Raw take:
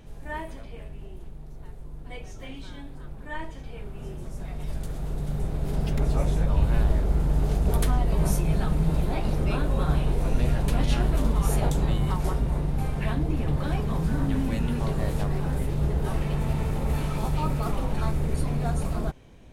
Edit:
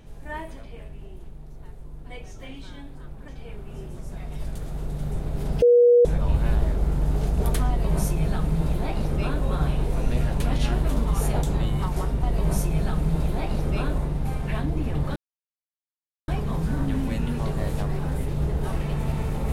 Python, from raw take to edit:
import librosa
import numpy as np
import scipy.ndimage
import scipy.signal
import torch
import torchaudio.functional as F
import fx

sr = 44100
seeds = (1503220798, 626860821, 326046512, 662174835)

y = fx.edit(x, sr, fx.cut(start_s=3.28, length_s=0.28),
    fx.bleep(start_s=5.9, length_s=0.43, hz=482.0, db=-11.5),
    fx.duplicate(start_s=7.97, length_s=1.75, to_s=12.51),
    fx.insert_silence(at_s=13.69, length_s=1.12), tone=tone)